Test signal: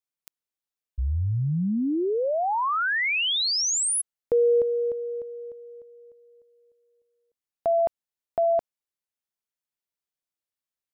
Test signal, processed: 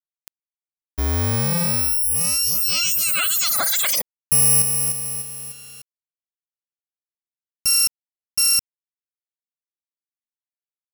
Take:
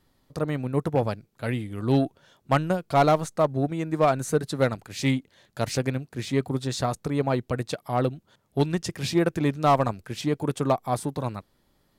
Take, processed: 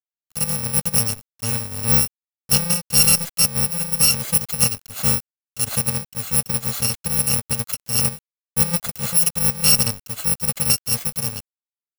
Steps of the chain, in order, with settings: bit-reversed sample order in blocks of 128 samples; small samples zeroed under -42 dBFS; trim +4.5 dB

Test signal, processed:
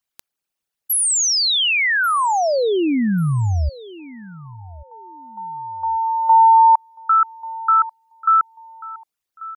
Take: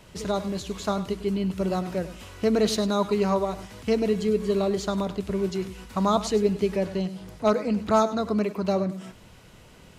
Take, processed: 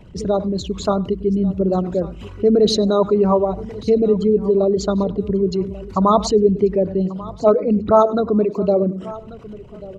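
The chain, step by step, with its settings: resonances exaggerated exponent 2; feedback delay 1139 ms, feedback 25%, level -19 dB; trim +8 dB

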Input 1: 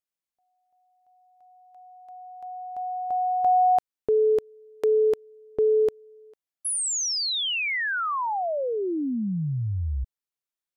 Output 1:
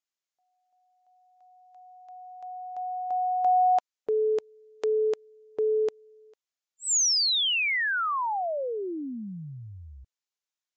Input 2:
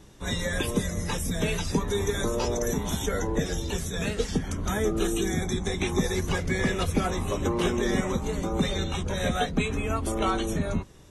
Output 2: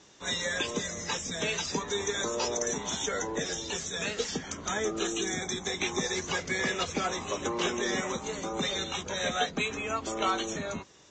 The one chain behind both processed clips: high-pass 580 Hz 6 dB/octave; treble shelf 5.1 kHz +6.5 dB; Vorbis 96 kbps 16 kHz

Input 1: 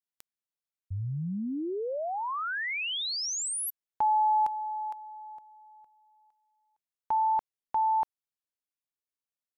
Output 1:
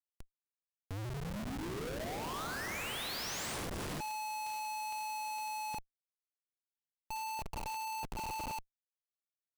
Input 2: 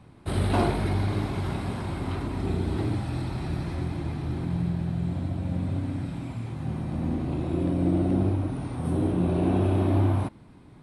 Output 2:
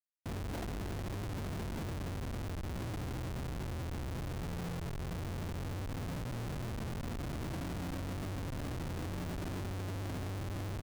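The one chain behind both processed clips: plate-style reverb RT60 2.9 s, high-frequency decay 0.9×, pre-delay 0 ms, DRR 4.5 dB; compression 20:1, threshold -36 dBFS; low-pass that closes with the level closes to 530 Hz, closed at -22 dBFS; on a send: delay 108 ms -17 dB; on the sum: Schmitt trigger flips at -40 dBFS; trim +1.5 dB

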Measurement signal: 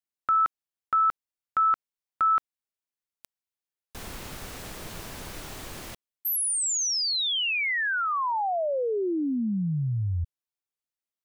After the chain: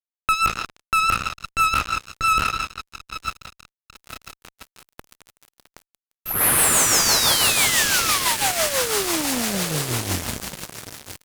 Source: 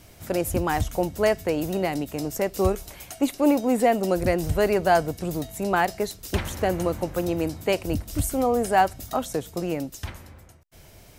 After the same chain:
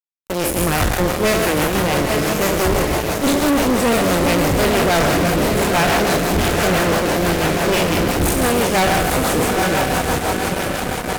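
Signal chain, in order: spectral sustain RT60 1.93 s; Chebyshev shaper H 3 -40 dB, 4 -11 dB, 7 -21 dB, 8 -43 dB, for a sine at -3.5 dBFS; on a send: echo that smears into a reverb 918 ms, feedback 65%, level -8 dB; on the sum: rotary cabinet horn 6 Hz; fuzz box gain 29 dB, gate -35 dBFS

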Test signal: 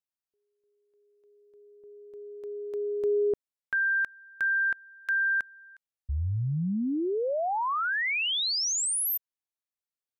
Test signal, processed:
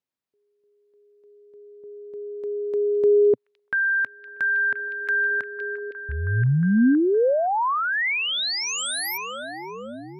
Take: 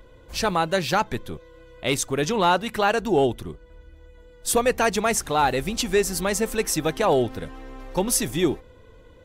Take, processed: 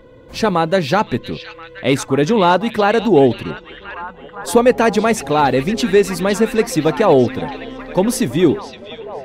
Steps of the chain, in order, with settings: graphic EQ 125/250/500/1000/2000/4000 Hz +10/+12/+9/+6/+6/+5 dB; on a send: repeats whose band climbs or falls 514 ms, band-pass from 3.3 kHz, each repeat -0.7 oct, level -6 dB; on the sum: trim -3.5 dB

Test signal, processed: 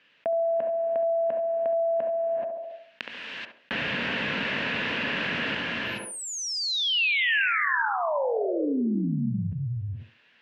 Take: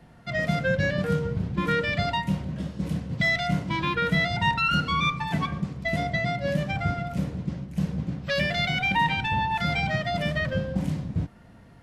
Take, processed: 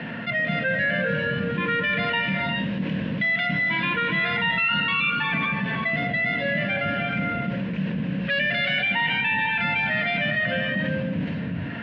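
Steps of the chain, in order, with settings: cabinet simulation 210–3300 Hz, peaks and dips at 230 Hz +5 dB, 360 Hz -8 dB, 770 Hz -9 dB, 1.2 kHz -6 dB, 1.7 kHz +8 dB, 2.7 kHz +8 dB; band-passed feedback delay 69 ms, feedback 43%, band-pass 530 Hz, level -10 dB; gated-style reverb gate 450 ms rising, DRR 4.5 dB; level flattener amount 70%; trim -5 dB

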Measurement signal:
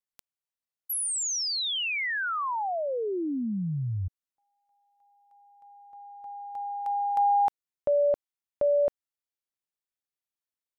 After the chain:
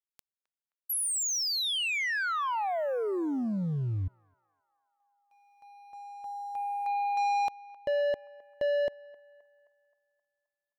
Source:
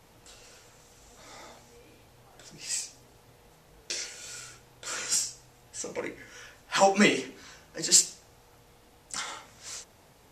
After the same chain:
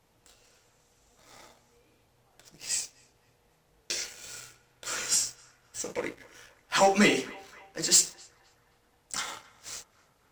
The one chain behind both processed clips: waveshaping leveller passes 2; band-passed feedback delay 263 ms, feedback 61%, band-pass 1.2 kHz, level -20 dB; trim -6 dB

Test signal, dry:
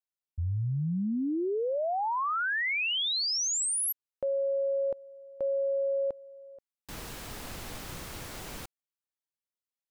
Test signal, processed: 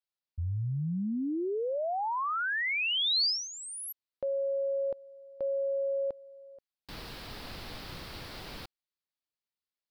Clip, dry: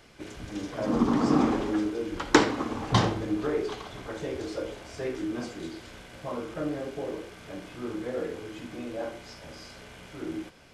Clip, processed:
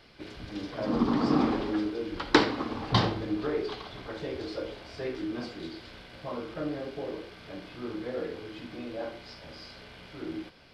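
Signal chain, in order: resonant high shelf 5.6 kHz -6.5 dB, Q 3; trim -2 dB

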